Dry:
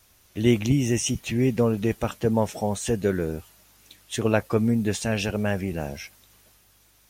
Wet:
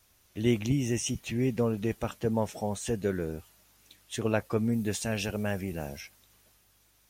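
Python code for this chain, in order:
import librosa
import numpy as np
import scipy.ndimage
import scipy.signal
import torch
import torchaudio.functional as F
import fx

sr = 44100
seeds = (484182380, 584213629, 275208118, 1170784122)

y = fx.high_shelf(x, sr, hz=7900.0, db=7.5, at=(4.72, 6.01))
y = y * librosa.db_to_amplitude(-6.0)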